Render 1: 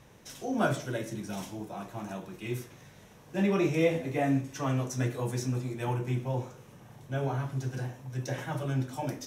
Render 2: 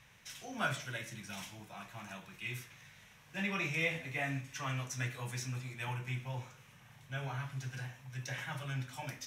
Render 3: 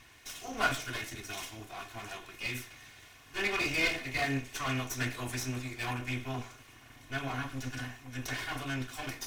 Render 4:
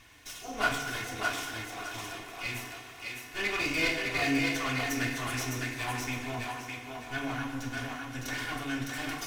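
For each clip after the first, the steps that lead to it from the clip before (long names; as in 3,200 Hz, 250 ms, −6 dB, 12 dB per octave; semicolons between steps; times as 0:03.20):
drawn EQ curve 150 Hz 0 dB, 350 Hz −11 dB, 2,300 Hz +12 dB, 4,500 Hz +6 dB, 10,000 Hz +4 dB; level −8 dB
lower of the sound and its delayed copy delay 2.8 ms; level +6.5 dB
on a send: feedback echo with a high-pass in the loop 609 ms, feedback 30%, high-pass 320 Hz, level −3 dB; on the sum: feedback delay network reverb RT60 1.8 s, low-frequency decay 0.75×, high-frequency decay 0.55×, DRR 4 dB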